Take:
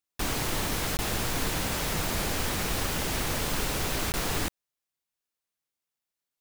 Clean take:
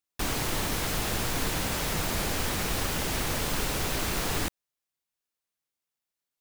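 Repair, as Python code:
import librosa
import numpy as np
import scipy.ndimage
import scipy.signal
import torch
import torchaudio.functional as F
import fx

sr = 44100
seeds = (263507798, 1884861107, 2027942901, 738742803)

y = fx.fix_interpolate(x, sr, at_s=(0.97, 4.12), length_ms=19.0)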